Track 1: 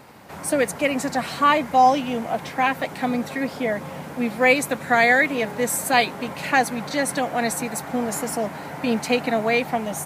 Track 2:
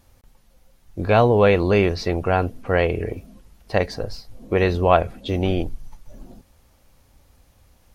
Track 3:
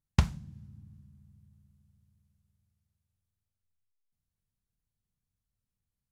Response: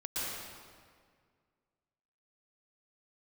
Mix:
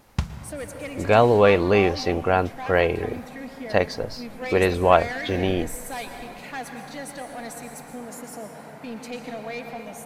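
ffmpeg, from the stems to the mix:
-filter_complex "[0:a]asoftclip=type=tanh:threshold=0.178,volume=0.211,asplit=2[s0][s1];[s1]volume=0.422[s2];[1:a]lowshelf=f=150:g=-8,volume=1.06[s3];[2:a]volume=0.794,asplit=2[s4][s5];[s5]volume=0.168[s6];[3:a]atrim=start_sample=2205[s7];[s2][s6]amix=inputs=2:normalize=0[s8];[s8][s7]afir=irnorm=-1:irlink=0[s9];[s0][s3][s4][s9]amix=inputs=4:normalize=0"

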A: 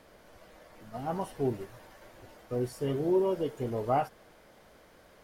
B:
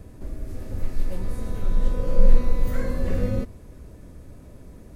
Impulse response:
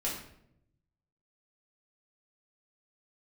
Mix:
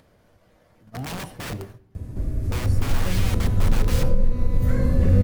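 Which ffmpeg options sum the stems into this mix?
-filter_complex "[0:a]agate=range=0.0708:threshold=0.00501:ratio=16:detection=peak,aeval=exprs='(mod(33.5*val(0)+1,2)-1)/33.5':c=same,volume=1.06,asplit=2[s0][s1];[s1]volume=0.133[s2];[1:a]acompressor=threshold=0.158:ratio=6,adelay=1950,volume=1.12[s3];[2:a]atrim=start_sample=2205[s4];[s2][s4]afir=irnorm=-1:irlink=0[s5];[s0][s3][s5]amix=inputs=3:normalize=0,equalizer=f=100:t=o:w=2.1:g=13,acompressor=mode=upward:threshold=0.00631:ratio=2.5"

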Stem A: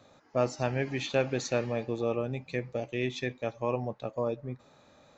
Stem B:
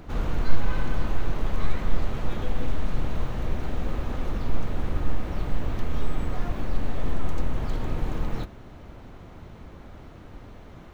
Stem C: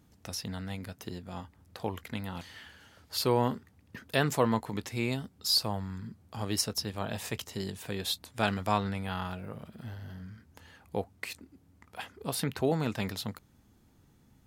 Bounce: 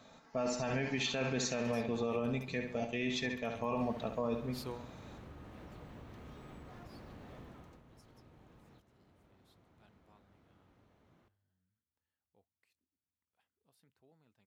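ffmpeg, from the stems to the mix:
-filter_complex "[0:a]equalizer=f=420:t=o:w=0.8:g=-5,aecho=1:1:4.5:0.52,volume=1.06,asplit=3[s0][s1][s2];[s1]volume=0.335[s3];[1:a]highpass=86,acompressor=threshold=0.0141:ratio=6,adelay=350,volume=0.282,afade=t=in:st=3.4:d=0.54:silence=0.281838,afade=t=out:st=7.43:d=0.39:silence=0.316228,asplit=2[s4][s5];[s5]volume=0.1[s6];[2:a]adelay=1400,volume=0.158[s7];[s2]apad=whole_len=699549[s8];[s7][s8]sidechaingate=range=0.0631:threshold=0.00141:ratio=16:detection=peak[s9];[s3][s6]amix=inputs=2:normalize=0,aecho=0:1:68|136|204|272|340|408:1|0.4|0.16|0.064|0.0256|0.0102[s10];[s0][s4][s9][s10]amix=inputs=4:normalize=0,alimiter=level_in=1.06:limit=0.0631:level=0:latency=1:release=30,volume=0.944"

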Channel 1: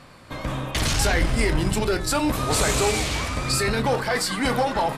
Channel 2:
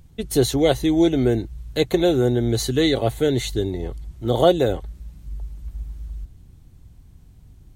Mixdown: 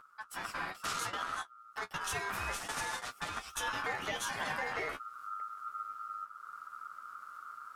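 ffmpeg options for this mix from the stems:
-filter_complex "[0:a]volume=0.794[s0];[1:a]acompressor=mode=upward:threshold=0.0251:ratio=2.5,alimiter=limit=0.211:level=0:latency=1:release=61,acompressor=threshold=0.0891:ratio=20,afade=t=in:st=3.62:d=0.28:silence=0.223872,asplit=2[s1][s2];[s2]apad=whole_len=219303[s3];[s0][s3]sidechaingate=range=0.00398:threshold=0.0126:ratio=16:detection=peak[s4];[s4][s1]amix=inputs=2:normalize=0,flanger=delay=8.5:depth=5:regen=29:speed=0.32:shape=triangular,aeval=exprs='val(0)*sin(2*PI*1300*n/s)':c=same,alimiter=level_in=1.12:limit=0.0631:level=0:latency=1:release=290,volume=0.891"

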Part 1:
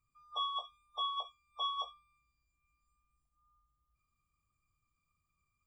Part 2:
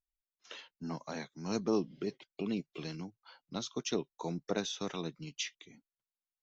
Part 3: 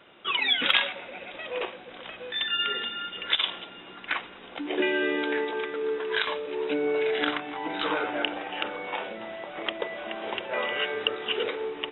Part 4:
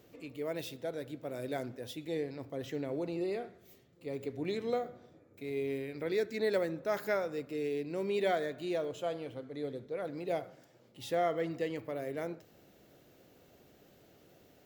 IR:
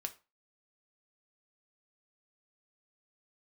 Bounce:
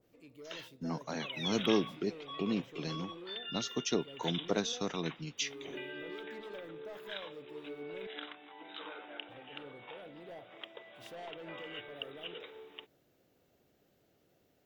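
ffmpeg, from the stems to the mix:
-filter_complex "[0:a]adelay=1300,volume=0.316[s0];[1:a]volume=1,asplit=2[s1][s2];[s2]volume=0.335[s3];[2:a]highpass=180,bass=f=250:g=-1,treble=f=4000:g=14,adelay=950,volume=0.112[s4];[3:a]asoftclip=type=tanh:threshold=0.02,adynamicequalizer=threshold=0.00141:dfrequency=1800:dqfactor=0.7:tfrequency=1800:tqfactor=0.7:attack=5:release=100:ratio=0.375:range=2.5:mode=cutabove:tftype=highshelf,volume=0.316,asplit=3[s5][s6][s7];[s5]atrim=end=8.07,asetpts=PTS-STARTPTS,afade=t=out:st=8.066:d=0.004:c=hsin[s8];[s6]atrim=start=8.07:end=9.29,asetpts=PTS-STARTPTS,volume=0[s9];[s7]atrim=start=9.29,asetpts=PTS-STARTPTS,afade=t=in:d=0.004:c=hsin[s10];[s8][s9][s10]concat=n=3:v=0:a=1[s11];[4:a]atrim=start_sample=2205[s12];[s3][s12]afir=irnorm=-1:irlink=0[s13];[s0][s1][s4][s11][s13]amix=inputs=5:normalize=0"

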